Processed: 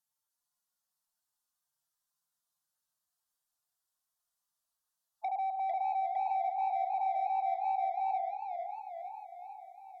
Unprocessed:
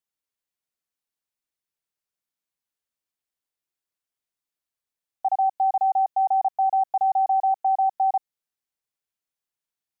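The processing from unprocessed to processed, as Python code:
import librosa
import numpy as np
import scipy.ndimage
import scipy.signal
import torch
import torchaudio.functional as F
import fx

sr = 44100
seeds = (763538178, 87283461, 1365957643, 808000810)

y = fx.hpss_only(x, sr, part='harmonic')
y = fx.leveller(y, sr, passes=1, at=(5.39, 7.65))
y = fx.low_shelf(y, sr, hz=450.0, db=-7.0)
y = fx.fixed_phaser(y, sr, hz=960.0, stages=4)
y = y + 0.33 * np.pad(y, (int(5.7 * sr / 1000.0), 0))[:len(y)]
y = fx.rev_schroeder(y, sr, rt60_s=0.63, comb_ms=26, drr_db=12.5)
y = 10.0 ** (-38.0 / 20.0) * np.tanh(y / 10.0 ** (-38.0 / 20.0))
y = fx.env_lowpass_down(y, sr, base_hz=910.0, full_db=-42.5)
y = fx.echo_warbled(y, sr, ms=451, feedback_pct=62, rate_hz=2.8, cents=173, wet_db=-7.0)
y = y * 10.0 ** (8.5 / 20.0)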